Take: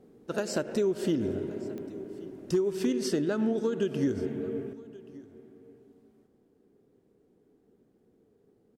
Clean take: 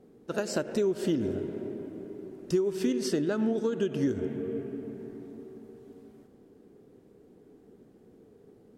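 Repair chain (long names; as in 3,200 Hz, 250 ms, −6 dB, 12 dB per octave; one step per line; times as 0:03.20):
clipped peaks rebuilt −18.5 dBFS
click removal
echo removal 1,129 ms −22 dB
level correction +9.5 dB, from 0:04.73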